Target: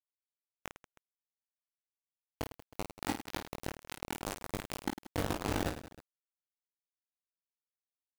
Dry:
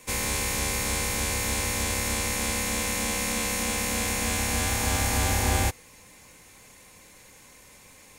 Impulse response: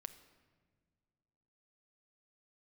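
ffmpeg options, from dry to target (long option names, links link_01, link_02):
-filter_complex "[0:a]aemphasis=mode=reproduction:type=riaa,bandreject=frequency=570:width=12,acrossover=split=260|6000[link_01][link_02][link_03];[link_02]acompressor=threshold=-48dB:ratio=4[link_04];[link_01][link_04][link_03]amix=inputs=3:normalize=0,asoftclip=type=tanh:threshold=-10dB,asplit=4[link_05][link_06][link_07][link_08];[link_06]asetrate=33038,aresample=44100,atempo=1.33484,volume=-9dB[link_09];[link_07]asetrate=35002,aresample=44100,atempo=1.25992,volume=-14dB[link_10];[link_08]asetrate=58866,aresample=44100,atempo=0.749154,volume=-4dB[link_11];[link_05][link_09][link_10][link_11]amix=inputs=4:normalize=0,crystalizer=i=4.5:c=0,asplit=3[link_12][link_13][link_14];[link_12]bandpass=frequency=300:width_type=q:width=8,volume=0dB[link_15];[link_13]bandpass=frequency=870:width_type=q:width=8,volume=-6dB[link_16];[link_14]bandpass=frequency=2240:width_type=q:width=8,volume=-9dB[link_17];[link_15][link_16][link_17]amix=inputs=3:normalize=0,acrusher=bits=4:mix=0:aa=0.000001,aecho=1:1:20|52|103.2|185.1|316.2:0.631|0.398|0.251|0.158|0.1,volume=1dB"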